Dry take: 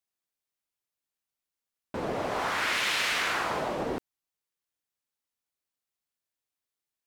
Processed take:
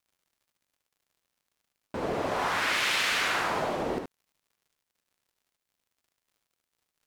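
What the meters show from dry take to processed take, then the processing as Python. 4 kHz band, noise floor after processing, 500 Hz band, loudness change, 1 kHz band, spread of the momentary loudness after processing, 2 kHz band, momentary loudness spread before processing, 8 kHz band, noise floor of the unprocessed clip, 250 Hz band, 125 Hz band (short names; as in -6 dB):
+1.0 dB, under -85 dBFS, +1.0 dB, +1.0 dB, +1.0 dB, 12 LU, +1.0 dB, 10 LU, +1.0 dB, under -85 dBFS, +1.0 dB, +1.0 dB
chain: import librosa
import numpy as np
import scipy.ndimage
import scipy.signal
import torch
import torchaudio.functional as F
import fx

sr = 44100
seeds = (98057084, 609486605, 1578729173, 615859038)

y = fx.dmg_crackle(x, sr, seeds[0], per_s=81.0, level_db=-58.0)
y = fx.room_early_taps(y, sr, ms=(64, 75), db=(-11.5, -6.5))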